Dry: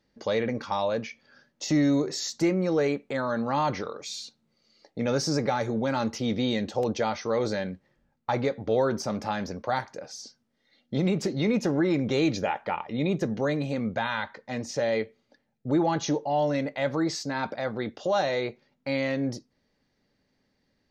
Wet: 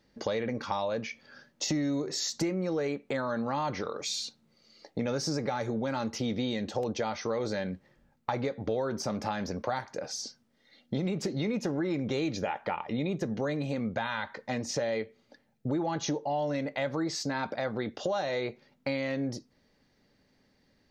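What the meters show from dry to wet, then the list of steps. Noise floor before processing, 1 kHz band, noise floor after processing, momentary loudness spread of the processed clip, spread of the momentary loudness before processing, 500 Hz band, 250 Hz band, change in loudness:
-74 dBFS, -4.5 dB, -69 dBFS, 5 LU, 11 LU, -5.0 dB, -5.0 dB, -4.5 dB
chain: compression 4:1, threshold -34 dBFS, peak gain reduction 12.5 dB; trim +4.5 dB

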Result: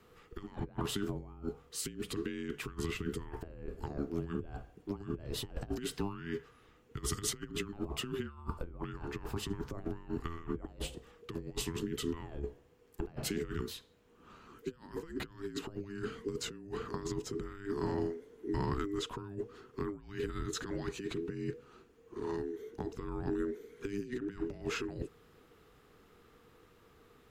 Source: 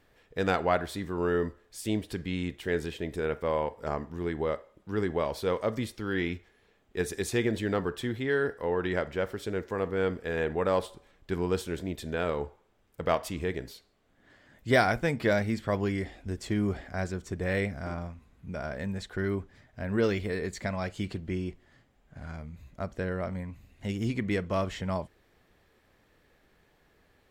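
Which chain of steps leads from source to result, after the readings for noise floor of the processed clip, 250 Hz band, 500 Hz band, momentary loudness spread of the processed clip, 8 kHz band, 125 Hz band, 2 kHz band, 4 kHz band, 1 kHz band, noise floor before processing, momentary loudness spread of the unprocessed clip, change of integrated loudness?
-63 dBFS, -6.5 dB, -10.0 dB, 9 LU, +2.5 dB, -7.5 dB, -13.0 dB, -2.0 dB, -11.5 dB, -66 dBFS, 12 LU, -8.5 dB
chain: compressor with a negative ratio -35 dBFS, ratio -0.5; frequency shift -500 Hz; trim -2.5 dB

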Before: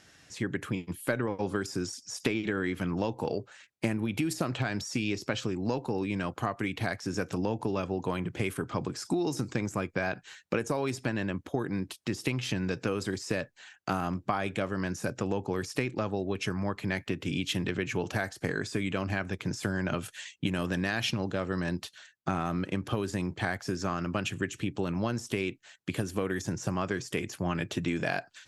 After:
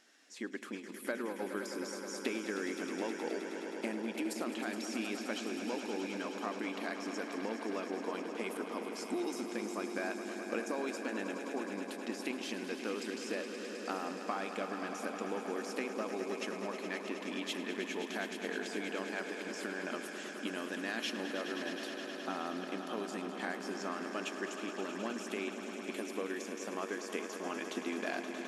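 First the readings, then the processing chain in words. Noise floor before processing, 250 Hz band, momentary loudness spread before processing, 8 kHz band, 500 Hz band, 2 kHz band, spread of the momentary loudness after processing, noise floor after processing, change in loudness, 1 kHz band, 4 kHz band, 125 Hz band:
-60 dBFS, -7.0 dB, 4 LU, -5.0 dB, -5.0 dB, -5.0 dB, 3 LU, -45 dBFS, -6.5 dB, -5.0 dB, -5.0 dB, under -20 dB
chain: brick-wall FIR high-pass 200 Hz; on a send: echo with a slow build-up 105 ms, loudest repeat 5, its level -11 dB; on the sum: trim -7.5 dB

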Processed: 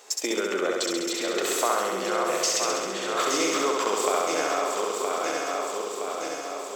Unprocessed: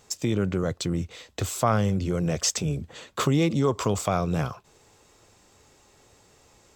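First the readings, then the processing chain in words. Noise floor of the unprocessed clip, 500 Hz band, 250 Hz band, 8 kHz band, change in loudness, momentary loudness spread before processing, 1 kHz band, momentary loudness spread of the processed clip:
-59 dBFS, +4.0 dB, -5.0 dB, +5.0 dB, +0.5 dB, 10 LU, +5.5 dB, 7 LU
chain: backward echo that repeats 484 ms, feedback 68%, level -6.5 dB; high-pass 370 Hz 24 dB/octave; dynamic bell 1.6 kHz, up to +4 dB, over -42 dBFS, Q 0.75; compression 2.5:1, threshold -36 dBFS, peak gain reduction 13.5 dB; on a send: flutter echo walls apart 11.5 m, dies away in 1.4 s; on the sum: trim +7.5 dB

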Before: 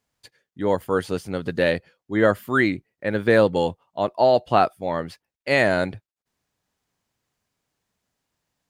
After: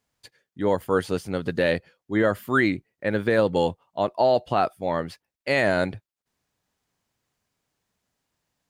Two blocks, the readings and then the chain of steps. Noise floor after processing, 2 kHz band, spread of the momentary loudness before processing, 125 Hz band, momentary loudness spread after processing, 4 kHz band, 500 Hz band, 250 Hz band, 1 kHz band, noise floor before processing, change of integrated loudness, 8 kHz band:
under -85 dBFS, -2.0 dB, 11 LU, -1.5 dB, 8 LU, -2.0 dB, -2.5 dB, -1.5 dB, -2.5 dB, under -85 dBFS, -2.0 dB, no reading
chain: peak limiter -10 dBFS, peak gain reduction 6.5 dB

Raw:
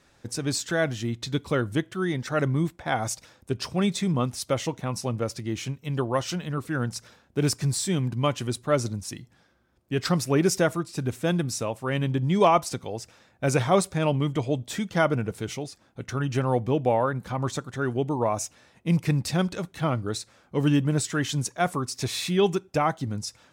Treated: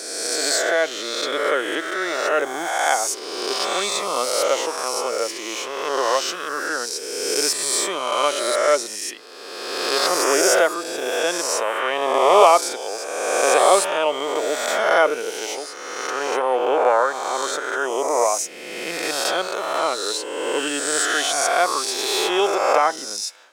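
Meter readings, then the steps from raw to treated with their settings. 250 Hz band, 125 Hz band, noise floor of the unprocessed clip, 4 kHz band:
-5.5 dB, under -25 dB, -62 dBFS, +11.0 dB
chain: reverse spectral sustain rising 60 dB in 1.78 s; high-pass 420 Hz 24 dB/octave; trim +4 dB

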